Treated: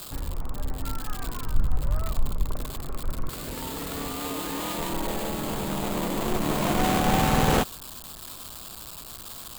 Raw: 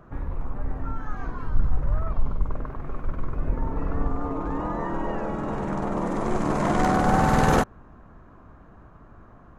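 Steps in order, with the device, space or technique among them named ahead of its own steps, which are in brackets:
0:03.29–0:04.78: meter weighting curve D
budget class-D amplifier (gap after every zero crossing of 0.24 ms; spike at every zero crossing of −19 dBFS)
level −1.5 dB

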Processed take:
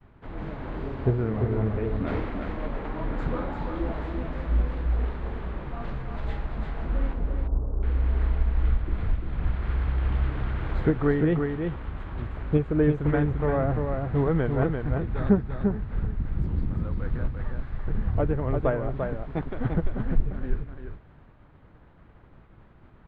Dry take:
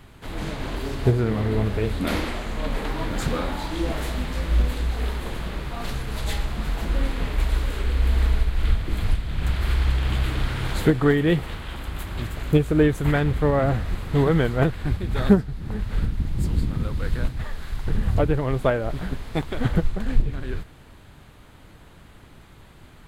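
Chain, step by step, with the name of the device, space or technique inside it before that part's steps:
hearing-loss simulation (low-pass filter 1,600 Hz 12 dB per octave; downward expander −45 dBFS)
0:07.13–0:07.83: Bessel low-pass filter 650 Hz, order 8
single-tap delay 344 ms −5 dB
level −4.5 dB

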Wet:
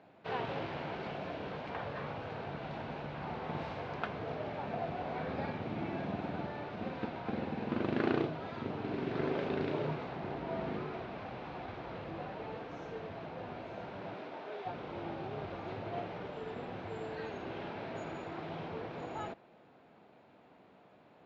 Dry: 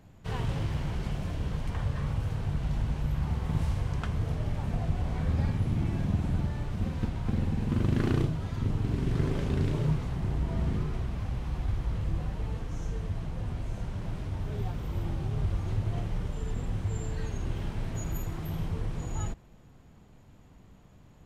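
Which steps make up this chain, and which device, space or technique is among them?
phone earpiece (loudspeaker in its box 380–3,600 Hz, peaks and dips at 680 Hz +3 dB, 1,100 Hz −4 dB, 1,900 Hz −4 dB, 3,100 Hz −6 dB)
0:14.14–0:14.65: high-pass filter 170 Hz → 530 Hz 12 dB per octave
level +4 dB

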